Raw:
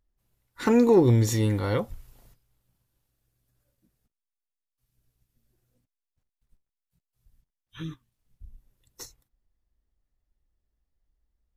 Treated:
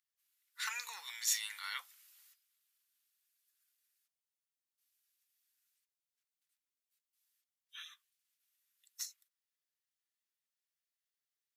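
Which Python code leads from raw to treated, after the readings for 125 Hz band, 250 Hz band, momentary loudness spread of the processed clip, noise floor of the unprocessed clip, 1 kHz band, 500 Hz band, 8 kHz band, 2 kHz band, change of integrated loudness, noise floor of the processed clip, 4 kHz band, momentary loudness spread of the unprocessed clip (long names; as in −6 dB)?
below −40 dB, below −40 dB, 17 LU, below −85 dBFS, −15.5 dB, below −40 dB, +0.5 dB, −3.5 dB, −17.0 dB, below −85 dBFS, 0.0 dB, 21 LU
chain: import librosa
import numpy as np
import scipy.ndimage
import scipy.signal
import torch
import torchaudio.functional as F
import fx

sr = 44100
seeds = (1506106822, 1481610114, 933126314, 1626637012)

y = scipy.signal.sosfilt(scipy.signal.bessel(6, 2200.0, 'highpass', norm='mag', fs=sr, output='sos'), x)
y = F.gain(torch.from_numpy(y), 1.0).numpy()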